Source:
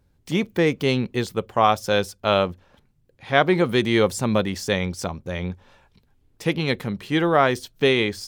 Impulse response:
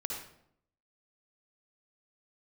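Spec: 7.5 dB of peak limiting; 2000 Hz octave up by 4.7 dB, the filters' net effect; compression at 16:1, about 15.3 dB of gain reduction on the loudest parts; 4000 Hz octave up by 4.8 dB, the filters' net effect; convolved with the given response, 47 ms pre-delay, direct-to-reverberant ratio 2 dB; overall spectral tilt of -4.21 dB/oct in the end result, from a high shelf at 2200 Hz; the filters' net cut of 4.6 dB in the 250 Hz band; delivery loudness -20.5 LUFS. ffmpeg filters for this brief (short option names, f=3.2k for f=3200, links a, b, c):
-filter_complex "[0:a]equalizer=f=250:t=o:g=-7,equalizer=f=2k:t=o:g=6,highshelf=f=2.2k:g=-4,equalizer=f=4k:t=o:g=7.5,acompressor=threshold=-26dB:ratio=16,alimiter=limit=-20.5dB:level=0:latency=1,asplit=2[a][b];[1:a]atrim=start_sample=2205,adelay=47[c];[b][c]afir=irnorm=-1:irlink=0,volume=-3.5dB[d];[a][d]amix=inputs=2:normalize=0,volume=11dB"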